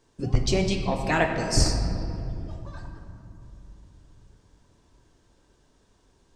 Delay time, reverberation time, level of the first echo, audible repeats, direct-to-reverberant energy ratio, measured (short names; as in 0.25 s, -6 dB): none, 2.9 s, none, none, 3.0 dB